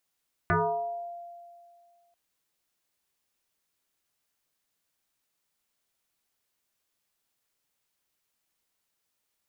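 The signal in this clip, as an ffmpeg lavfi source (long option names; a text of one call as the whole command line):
ffmpeg -f lavfi -i "aevalsrc='0.1*pow(10,-3*t/2.15)*sin(2*PI*692*t+4.3*pow(10,-3*t/0.85)*sin(2*PI*0.38*692*t))':duration=1.64:sample_rate=44100" out.wav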